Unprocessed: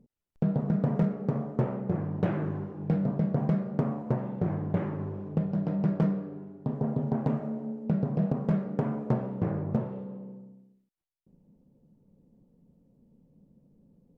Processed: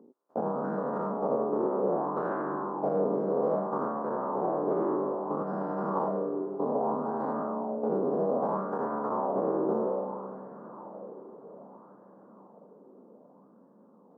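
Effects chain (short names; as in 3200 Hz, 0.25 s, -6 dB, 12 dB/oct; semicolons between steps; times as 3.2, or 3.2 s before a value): spectral dilation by 0.12 s; HPF 260 Hz 24 dB/oct; resonant high shelf 1600 Hz -13 dB, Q 3; in parallel at +1 dB: compressor, threshold -37 dBFS, peak gain reduction 15.5 dB; on the sum: limiter -20.5 dBFS, peak gain reduction 9.5 dB; on a send: diffused feedback echo 1.092 s, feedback 42%, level -14.5 dB; on the sum: LFO bell 0.62 Hz 360–1700 Hz +9 dB; gain -3.5 dB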